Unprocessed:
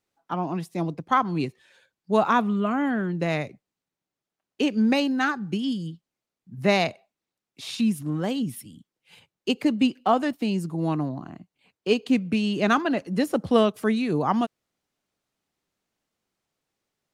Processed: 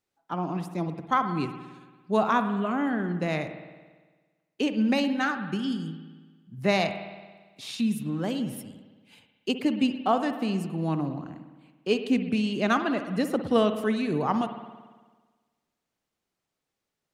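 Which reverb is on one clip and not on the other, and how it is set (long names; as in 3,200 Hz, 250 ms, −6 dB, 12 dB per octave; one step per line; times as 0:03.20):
spring reverb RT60 1.4 s, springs 56 ms, chirp 55 ms, DRR 8.5 dB
level −3 dB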